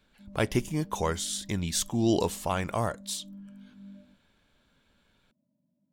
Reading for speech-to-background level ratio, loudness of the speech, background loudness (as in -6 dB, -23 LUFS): 19.5 dB, -30.0 LUFS, -49.5 LUFS